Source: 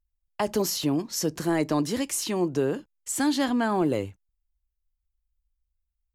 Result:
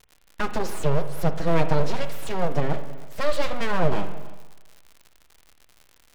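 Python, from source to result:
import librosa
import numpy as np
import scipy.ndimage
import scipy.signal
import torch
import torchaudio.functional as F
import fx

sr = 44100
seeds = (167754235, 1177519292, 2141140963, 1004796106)

p1 = fx.env_lowpass(x, sr, base_hz=790.0, full_db=-24.5)
p2 = scipy.signal.sosfilt(scipy.signal.butter(2, 4100.0, 'lowpass', fs=sr, output='sos'), p1)
p3 = fx.low_shelf(p2, sr, hz=160.0, db=9.0)
p4 = p3 + 0.7 * np.pad(p3, (int(6.3 * sr / 1000.0), 0))[:len(p3)]
p5 = np.abs(p4)
p6 = fx.dmg_crackle(p5, sr, seeds[0], per_s=110.0, level_db=-37.0)
p7 = p6 + fx.echo_single(p6, sr, ms=321, db=-21.5, dry=0)
y = fx.rev_spring(p7, sr, rt60_s=1.2, pass_ms=(42, 58), chirp_ms=40, drr_db=9.5)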